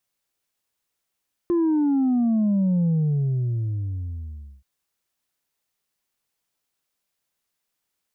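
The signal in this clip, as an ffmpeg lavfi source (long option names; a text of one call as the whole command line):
ffmpeg -f lavfi -i "aevalsrc='0.126*clip((3.13-t)/1.76,0,1)*tanh(1.26*sin(2*PI*350*3.13/log(65/350)*(exp(log(65/350)*t/3.13)-1)))/tanh(1.26)':duration=3.13:sample_rate=44100" out.wav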